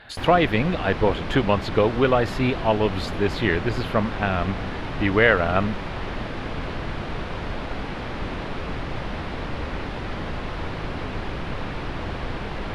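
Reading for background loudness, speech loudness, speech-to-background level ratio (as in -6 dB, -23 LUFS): -31.5 LUFS, -22.5 LUFS, 9.0 dB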